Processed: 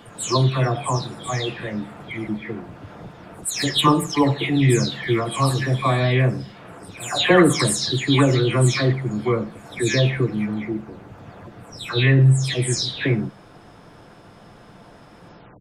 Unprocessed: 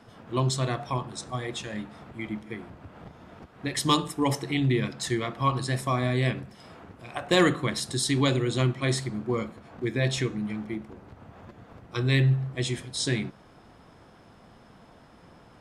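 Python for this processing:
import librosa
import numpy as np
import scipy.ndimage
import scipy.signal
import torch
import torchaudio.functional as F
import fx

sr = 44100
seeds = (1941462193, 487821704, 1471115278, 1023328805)

y = fx.spec_delay(x, sr, highs='early', ms=314)
y = y * 10.0 ** (8.0 / 20.0)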